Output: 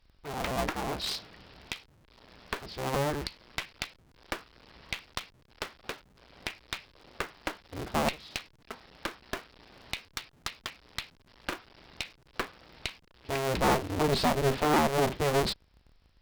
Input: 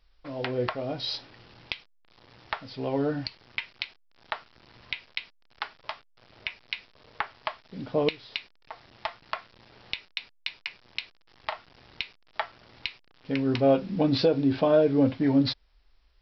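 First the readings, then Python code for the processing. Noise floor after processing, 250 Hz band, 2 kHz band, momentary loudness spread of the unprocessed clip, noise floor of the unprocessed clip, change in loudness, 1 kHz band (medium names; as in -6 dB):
-63 dBFS, -7.5 dB, 0.0 dB, 16 LU, -61 dBFS, -3.5 dB, +3.5 dB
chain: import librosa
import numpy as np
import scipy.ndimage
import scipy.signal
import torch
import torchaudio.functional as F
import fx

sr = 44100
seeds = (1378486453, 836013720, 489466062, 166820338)

y = fx.cycle_switch(x, sr, every=2, mode='inverted')
y = fx.clip_asym(y, sr, top_db=-32.5, bottom_db=-15.0)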